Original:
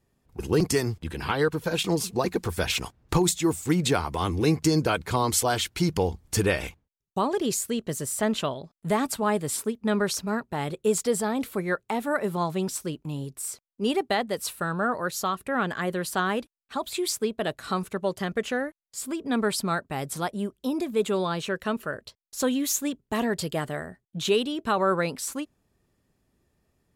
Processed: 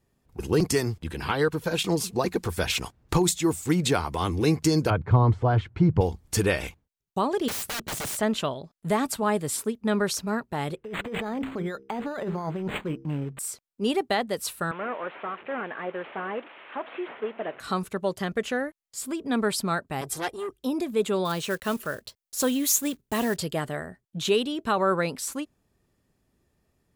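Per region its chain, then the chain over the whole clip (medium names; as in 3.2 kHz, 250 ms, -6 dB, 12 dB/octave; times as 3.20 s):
4.90–6.01 s: de-esser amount 50% + low-pass 1.4 kHz + peaking EQ 110 Hz +14.5 dB 0.89 oct
7.48–8.17 s: high-pass 75 Hz 6 dB/octave + bass shelf 320 Hz +10.5 dB + integer overflow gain 26.5 dB
10.76–13.39 s: de-hum 66.44 Hz, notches 7 + compressor with a negative ratio -30 dBFS + decimation joined by straight lines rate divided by 8×
14.71–17.60 s: one-bit delta coder 16 kbps, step -36.5 dBFS + high-pass 410 Hz + distance through air 99 m
20.01–20.60 s: comb 2.5 ms, depth 96% + transformer saturation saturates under 2.1 kHz
21.25–23.37 s: block-companded coder 5-bit + treble shelf 6.5 kHz +7 dB
whole clip: none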